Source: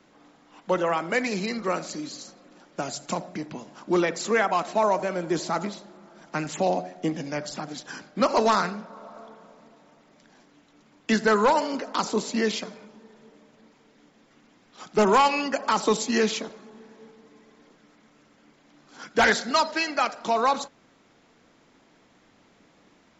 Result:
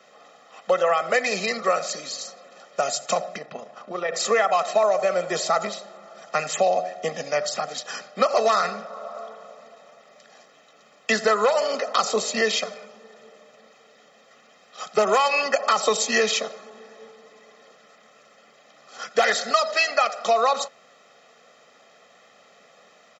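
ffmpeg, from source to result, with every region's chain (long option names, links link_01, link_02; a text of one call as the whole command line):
ffmpeg -i in.wav -filter_complex "[0:a]asettb=1/sr,asplit=3[link_01][link_02][link_03];[link_01]atrim=end=3.384[link_04];[link_02]atrim=start=3.38:end=4.14,asetpts=PTS-STARTPTS,afade=type=in:duration=0.004:curve=qsin,afade=type=out:start_time=0.756:duration=0.004:curve=qsin,aemphasis=mode=reproduction:type=75fm,acompressor=threshold=-27dB:ratio=3:attack=3.2:release=140:knee=1:detection=peak,tremolo=f=28:d=0.462[link_05];[link_03]atrim=start=4.136[link_06];[link_04][link_05]acrossfade=duration=0.004:curve1=hsin:curve2=qsin[link_07];[link_07][link_06]acrossfade=duration=0.004:curve1=qsin:curve2=hsin,highpass=350,aecho=1:1:1.6:0.91,acompressor=threshold=-21dB:ratio=6,volume=5dB" out.wav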